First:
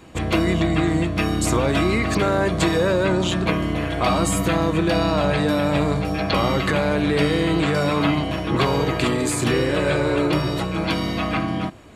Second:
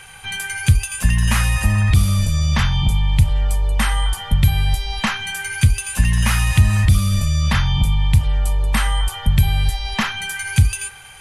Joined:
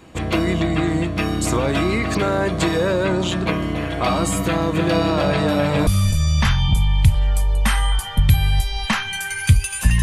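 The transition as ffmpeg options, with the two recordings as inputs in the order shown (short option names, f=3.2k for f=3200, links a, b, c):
-filter_complex "[0:a]asplit=3[a][b][c];[a]afade=t=out:st=4.74:d=0.02[d];[b]aecho=1:1:305:0.531,afade=t=in:st=4.74:d=0.02,afade=t=out:st=5.87:d=0.02[e];[c]afade=t=in:st=5.87:d=0.02[f];[d][e][f]amix=inputs=3:normalize=0,apad=whole_dur=10.02,atrim=end=10.02,atrim=end=5.872[g];[1:a]atrim=start=2.008:end=6.16[h];[g][h]acrossfade=d=0.004:c1=hsin:c2=hsin"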